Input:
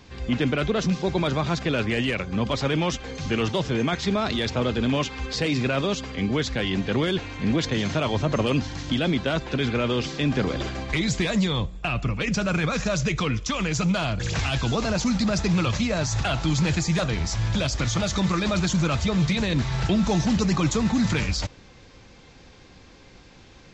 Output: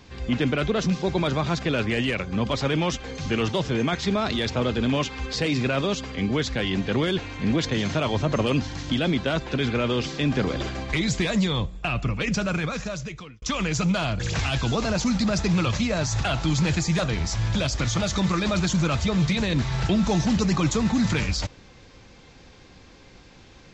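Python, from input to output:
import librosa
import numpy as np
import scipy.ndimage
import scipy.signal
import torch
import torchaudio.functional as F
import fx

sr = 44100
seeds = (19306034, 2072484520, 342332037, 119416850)

y = fx.edit(x, sr, fx.fade_out_span(start_s=12.33, length_s=1.09), tone=tone)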